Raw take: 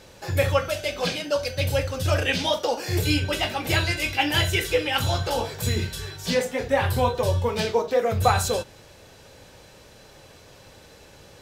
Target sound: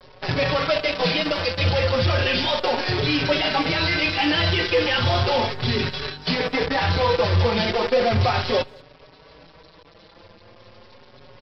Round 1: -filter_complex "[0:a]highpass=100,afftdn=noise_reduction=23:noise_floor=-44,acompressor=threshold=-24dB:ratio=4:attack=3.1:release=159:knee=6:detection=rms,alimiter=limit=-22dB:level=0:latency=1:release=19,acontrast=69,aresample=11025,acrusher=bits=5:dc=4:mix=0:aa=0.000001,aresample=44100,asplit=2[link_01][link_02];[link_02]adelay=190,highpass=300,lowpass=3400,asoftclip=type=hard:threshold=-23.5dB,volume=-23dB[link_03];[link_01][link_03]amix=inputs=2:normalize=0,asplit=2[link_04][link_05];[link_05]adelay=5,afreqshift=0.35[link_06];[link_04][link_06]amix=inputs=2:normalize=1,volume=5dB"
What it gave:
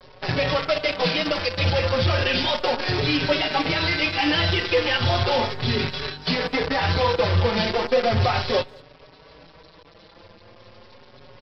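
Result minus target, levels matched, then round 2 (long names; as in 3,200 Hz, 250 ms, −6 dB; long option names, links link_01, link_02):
downward compressor: peak gain reduction +11.5 dB
-filter_complex "[0:a]highpass=100,afftdn=noise_reduction=23:noise_floor=-44,alimiter=limit=-22dB:level=0:latency=1:release=19,acontrast=69,aresample=11025,acrusher=bits=5:dc=4:mix=0:aa=0.000001,aresample=44100,asplit=2[link_01][link_02];[link_02]adelay=190,highpass=300,lowpass=3400,asoftclip=type=hard:threshold=-23.5dB,volume=-23dB[link_03];[link_01][link_03]amix=inputs=2:normalize=0,asplit=2[link_04][link_05];[link_05]adelay=5,afreqshift=0.35[link_06];[link_04][link_06]amix=inputs=2:normalize=1,volume=5dB"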